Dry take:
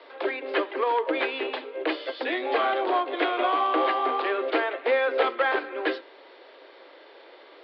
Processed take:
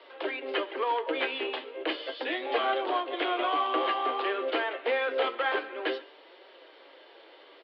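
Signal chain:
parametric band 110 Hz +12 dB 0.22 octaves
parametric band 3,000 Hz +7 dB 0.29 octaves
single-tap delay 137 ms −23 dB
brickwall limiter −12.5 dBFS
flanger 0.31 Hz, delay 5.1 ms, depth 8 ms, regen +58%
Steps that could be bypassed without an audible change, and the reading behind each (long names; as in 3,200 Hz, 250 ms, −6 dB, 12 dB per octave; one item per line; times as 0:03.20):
parametric band 110 Hz: nothing at its input below 230 Hz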